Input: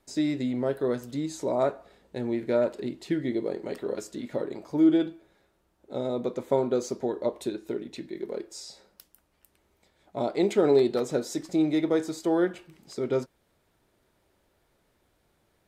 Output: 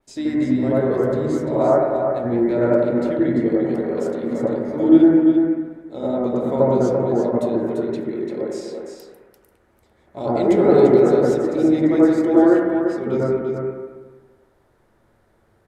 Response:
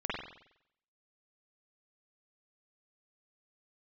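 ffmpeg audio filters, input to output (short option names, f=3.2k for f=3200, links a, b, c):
-filter_complex "[0:a]asplit=3[a][b][c];[b]asetrate=22050,aresample=44100,atempo=2,volume=-18dB[d];[c]asetrate=35002,aresample=44100,atempo=1.25992,volume=-17dB[e];[a][d][e]amix=inputs=3:normalize=0,aecho=1:1:343:0.473[f];[1:a]atrim=start_sample=2205,asetrate=24696,aresample=44100[g];[f][g]afir=irnorm=-1:irlink=0,adynamicequalizer=threshold=0.0158:dfrequency=3600:dqfactor=0.7:tfrequency=3600:tqfactor=0.7:attack=5:release=100:ratio=0.375:range=1.5:mode=cutabove:tftype=highshelf,volume=-1.5dB"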